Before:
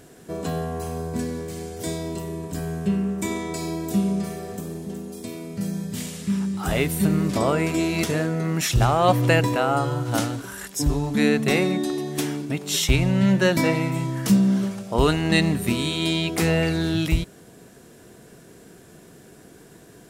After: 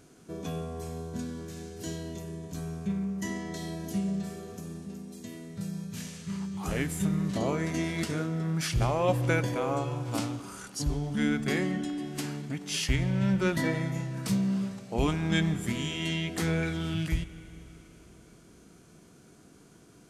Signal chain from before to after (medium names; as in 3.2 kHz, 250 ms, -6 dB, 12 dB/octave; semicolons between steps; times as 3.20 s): formant shift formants -3 st; spring tank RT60 3.6 s, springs 31/48 ms, chirp 20 ms, DRR 14 dB; trim -8 dB